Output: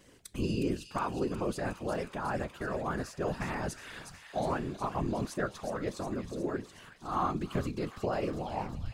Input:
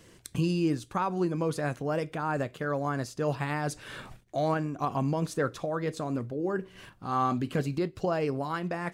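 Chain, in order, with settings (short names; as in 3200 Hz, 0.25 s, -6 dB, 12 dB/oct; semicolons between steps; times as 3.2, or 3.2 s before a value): tape stop at the end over 0.57 s; thin delay 0.363 s, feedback 68%, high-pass 2200 Hz, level -6 dB; whisperiser; gain -4 dB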